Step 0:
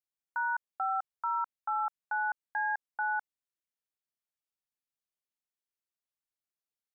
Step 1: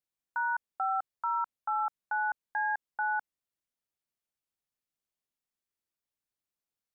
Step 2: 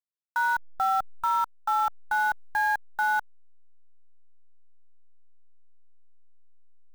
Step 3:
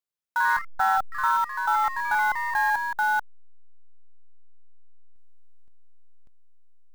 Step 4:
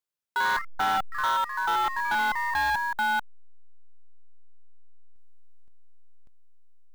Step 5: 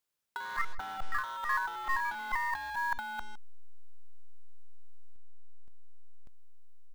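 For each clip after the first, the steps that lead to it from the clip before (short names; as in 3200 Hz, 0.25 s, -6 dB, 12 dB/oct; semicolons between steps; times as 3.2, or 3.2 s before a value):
low shelf 470 Hz +5.5 dB
level-crossing sampler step -42.5 dBFS; gain +6 dB
echoes that change speed 82 ms, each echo +2 st, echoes 3, each echo -6 dB; gain +1.5 dB
hard clip -21.5 dBFS, distortion -12 dB
speakerphone echo 0.16 s, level -22 dB; negative-ratio compressor -31 dBFS, ratio -0.5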